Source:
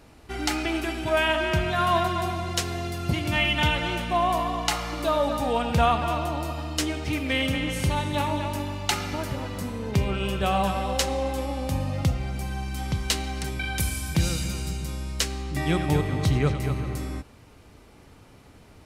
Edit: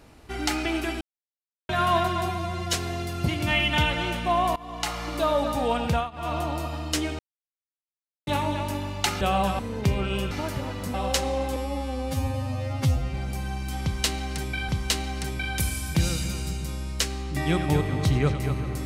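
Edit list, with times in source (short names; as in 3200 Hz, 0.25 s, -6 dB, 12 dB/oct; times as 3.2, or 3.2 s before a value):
1.01–1.69 mute
2.29–2.59 stretch 1.5×
4.41–5.09 fade in equal-power, from -22 dB
5.71–6.21 dip -23 dB, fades 0.25 s
7.04–8.12 mute
9.06–9.69 swap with 10.41–10.79
11.41–12.2 stretch 2×
12.89–13.75 loop, 2 plays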